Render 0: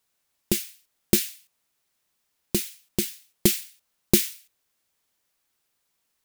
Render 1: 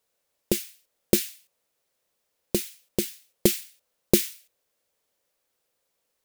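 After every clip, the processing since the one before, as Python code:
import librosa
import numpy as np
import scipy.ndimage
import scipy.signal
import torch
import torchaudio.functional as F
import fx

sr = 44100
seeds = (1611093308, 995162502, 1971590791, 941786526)

y = fx.peak_eq(x, sr, hz=520.0, db=12.5, octaves=0.7)
y = y * 10.0 ** (-2.5 / 20.0)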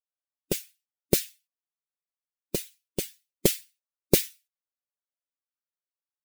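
y = fx.bin_expand(x, sr, power=1.5)
y = y + 0.53 * np.pad(y, (int(7.1 * sr / 1000.0), 0))[:len(y)]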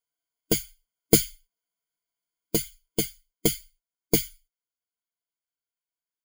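y = fx.ripple_eq(x, sr, per_octave=1.8, db=17)
y = fx.rider(y, sr, range_db=4, speed_s=0.5)
y = y * 10.0 ** (-2.0 / 20.0)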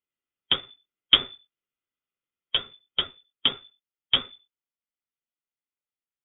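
y = fx.halfwave_hold(x, sr)
y = fx.freq_invert(y, sr, carrier_hz=3500)
y = y * 10.0 ** (-4.0 / 20.0)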